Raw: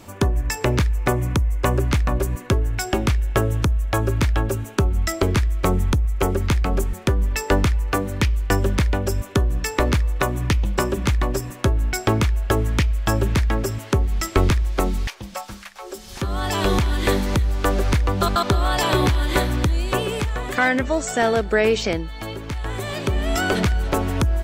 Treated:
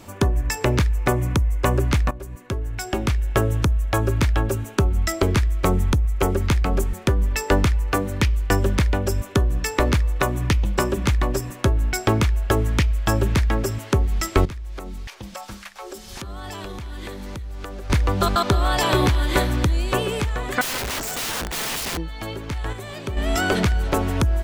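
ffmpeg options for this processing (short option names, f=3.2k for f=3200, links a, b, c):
-filter_complex "[0:a]asettb=1/sr,asplit=3[a][b][c];[a]atrim=end=14.454[d];[b]atrim=start=14.45:end=17.9,asetpts=PTS-STARTPTS,afade=t=in:d=0.004:c=qsin,afade=t=out:st=3.446:d=0.004:c=qsin,acompressor=threshold=-29dB:ratio=16:attack=3.2:release=140:knee=1:detection=peak[e];[c]atrim=start=17.896[f];[d][e]acrossfade=d=0.004:c1=hsin:c2=qsin[g];[g][f]acrossfade=d=0.004:c1=qsin:c2=hsin,asettb=1/sr,asplit=3[h][i][j];[h]atrim=end=20.614[k];[i]atrim=start=20.61:end=21.98,asetpts=PTS-STARTPTS,afade=t=in:d=0.004:c=qsin,afade=t=out:st=1.366:d=0.004:c=qsin,aeval=exprs='(mod(12.6*val(0)+1,2)-1)/12.6':c=same[l];[j]atrim=start=21.976[m];[k][l]acrossfade=d=0.004:c1=hsin:c2=qsin[n];[n][m]acrossfade=d=0.004:c1=qsin:c2=hsin,asplit=4[o][p][q][r];[o]atrim=end=2.11,asetpts=PTS-STARTPTS,afade=t=out:st=2.106:d=0.004:c=hsin:silence=0.149624[s];[p]atrim=start=2.11:end=22.732,asetpts=PTS-STARTPTS,afade=t=in:d=1.3:silence=0.149624[t];[q]atrim=start=22.728:end=23.172,asetpts=PTS-STARTPTS,volume=-6.5dB[u];[r]atrim=start=23.168[v];[s][t]concat=n=2:v=0:a=1[w];[w][u]acrossfade=d=0.004:c1=hsin:c2=hsin[x];[x][v]acrossfade=d=0.004:c1=hsin:c2=hsin"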